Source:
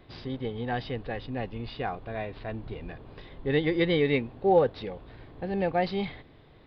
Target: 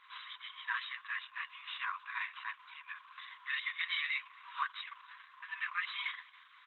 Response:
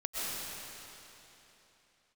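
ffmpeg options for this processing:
-filter_complex "[0:a]afftfilt=real='re*between(b*sr/4096,960,4000)':imag='im*between(b*sr/4096,960,4000)':win_size=4096:overlap=0.75,tiltshelf=f=1300:g=5.5,alimiter=level_in=2.11:limit=0.0631:level=0:latency=1:release=152,volume=0.473,flanger=delay=6:depth=5:regen=-17:speed=1.8:shape=triangular,asplit=2[s0][s1];[s1]adelay=274.1,volume=0.0562,highshelf=f=4000:g=-6.17[s2];[s0][s2]amix=inputs=2:normalize=0,volume=2.99" -ar 48000 -c:a libopus -b:a 10k

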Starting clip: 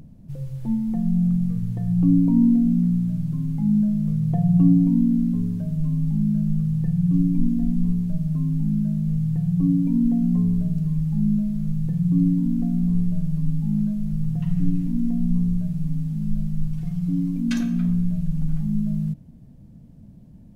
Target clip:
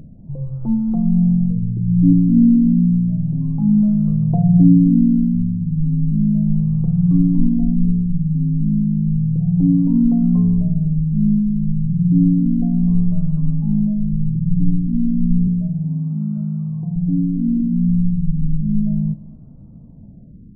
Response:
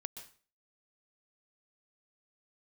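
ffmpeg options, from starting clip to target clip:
-filter_complex "[0:a]asettb=1/sr,asplit=3[s0][s1][s2];[s0]atrim=end=15.474[s3];[s1]atrim=start=15.47:end=16.96,asetpts=PTS-STARTPTS,afade=t=in:d=0.004:c=qsin,afade=t=out:st=1.486:d=0.004:c=qsin,highpass=f=110:w=0.5412,highpass=f=110:w=1.3066[s4];[s2]atrim=start=16.956[s5];[s3][s4]acrossfade=d=0.004:c1=hsin:c2=qsin[s6];[s6][s5]acrossfade=d=0.004:c1=qsin:c2=hsin,asplit=2[s7][s8];[1:a]atrim=start_sample=2205,asetrate=24696,aresample=44100[s9];[s8][s9]afir=irnorm=-1:irlink=0,volume=0.251[s10];[s7][s10]amix=inputs=2:normalize=0,afftfilt=real='re*lt(b*sr/1024,280*pow(1500/280,0.5+0.5*sin(2*PI*0.32*pts/sr)))':imag='im*lt(b*sr/1024,280*pow(1500/280,0.5+0.5*sin(2*PI*0.32*pts/sr)))':win_size=1024:overlap=0.75,volume=1.5"

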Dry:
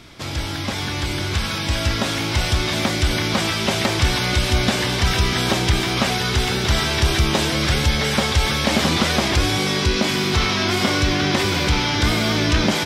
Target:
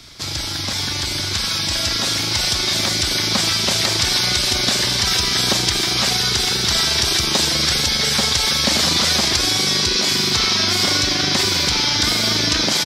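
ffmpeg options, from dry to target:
-filter_complex "[0:a]firequalizer=gain_entry='entry(2800,0);entry(4400,10);entry(9400,6)':delay=0.05:min_phase=1,acrossover=split=150|1000|2200[s0][s1][s2][s3];[s0]acompressor=threshold=0.0355:ratio=6[s4];[s1]tremolo=f=25:d=0.889[s5];[s4][s5][s2][s3]amix=inputs=4:normalize=0"

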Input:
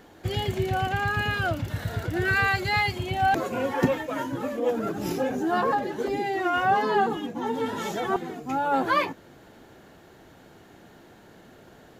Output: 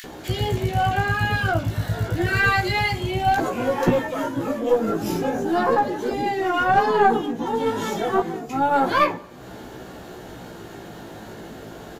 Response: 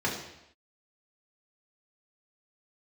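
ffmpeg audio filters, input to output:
-filter_complex "[0:a]acrossover=split=2100[s0][s1];[s0]adelay=40[s2];[s2][s1]amix=inputs=2:normalize=0,acompressor=mode=upward:threshold=0.0224:ratio=2.5,flanger=delay=16:depth=2.4:speed=0.31,aeval=exprs='0.316*(cos(1*acos(clip(val(0)/0.316,-1,1)))-cos(1*PI/2))+0.0708*(cos(2*acos(clip(val(0)/0.316,-1,1)))-cos(2*PI/2))':c=same,asplit=2[s3][s4];[1:a]atrim=start_sample=2205,adelay=67[s5];[s4][s5]afir=irnorm=-1:irlink=0,volume=0.0376[s6];[s3][s6]amix=inputs=2:normalize=0,volume=2.37"

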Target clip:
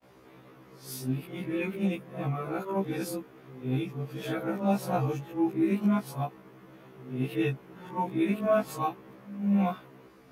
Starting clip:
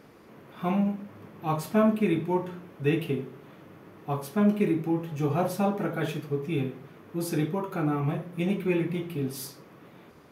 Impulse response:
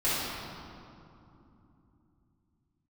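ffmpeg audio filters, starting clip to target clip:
-af "areverse,afftfilt=real='re*1.73*eq(mod(b,3),0)':imag='im*1.73*eq(mod(b,3),0)':win_size=2048:overlap=0.75"

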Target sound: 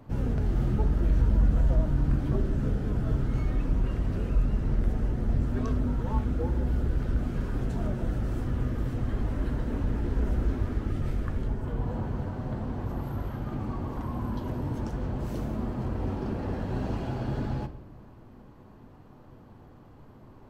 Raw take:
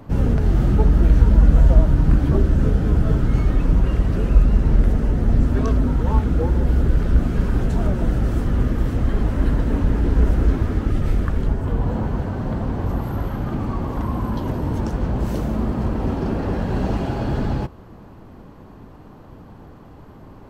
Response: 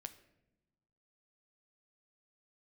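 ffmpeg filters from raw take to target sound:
-filter_complex "[0:a]asoftclip=type=tanh:threshold=0.891[s0];[1:a]atrim=start_sample=2205[s1];[s0][s1]afir=irnorm=-1:irlink=0,volume=0.596"

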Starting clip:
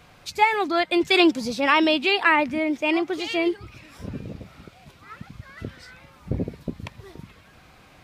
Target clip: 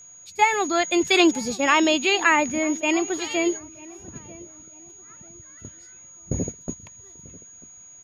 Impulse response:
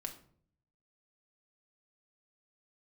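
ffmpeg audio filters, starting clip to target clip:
-filter_complex "[0:a]aeval=exprs='val(0)+0.0251*sin(2*PI*6700*n/s)':c=same,agate=range=0.251:threshold=0.0398:ratio=16:detection=peak,asplit=2[s0][s1];[s1]adelay=941,lowpass=f=1300:p=1,volume=0.0944,asplit=2[s2][s3];[s3]adelay=941,lowpass=f=1300:p=1,volume=0.36,asplit=2[s4][s5];[s5]adelay=941,lowpass=f=1300:p=1,volume=0.36[s6];[s0][s2][s4][s6]amix=inputs=4:normalize=0"

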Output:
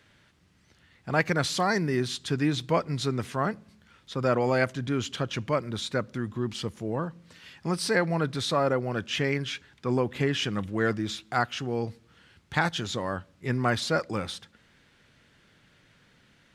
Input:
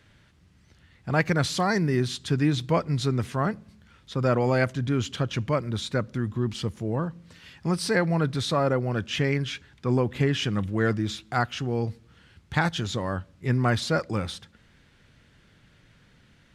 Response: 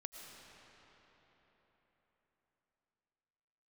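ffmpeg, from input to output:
-af "lowshelf=f=140:g=-10.5"

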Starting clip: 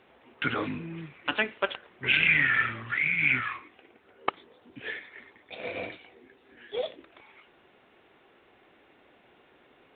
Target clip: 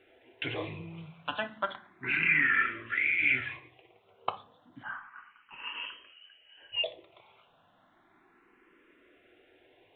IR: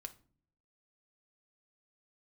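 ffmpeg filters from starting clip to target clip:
-filter_complex "[1:a]atrim=start_sample=2205[s0];[0:a][s0]afir=irnorm=-1:irlink=0,asettb=1/sr,asplit=3[s1][s2][s3];[s1]atrim=end=4.834[s4];[s2]atrim=start=4.83:end=6.84,asetpts=PTS-STARTPTS,afade=t=in:d=0.004:c=qsin,afade=t=out:st=2.006:d=0.004:c=qsin,lowpass=f=2800:t=q:w=0.5098,lowpass=f=2800:t=q:w=0.6013,lowpass=f=2800:t=q:w=0.9,lowpass=f=2800:t=q:w=2.563,afreqshift=-3300[s5];[s3]atrim=start=6.836[s6];[s4][s5]acrossfade=d=0.004:c1=hsin:c2=qsin[s7];[s7][s6]acrossfade=d=0.004:c1=qsin:c2=hsin,asplit=2[s8][s9];[s9]afreqshift=0.32[s10];[s8][s10]amix=inputs=2:normalize=1,volume=1.58"

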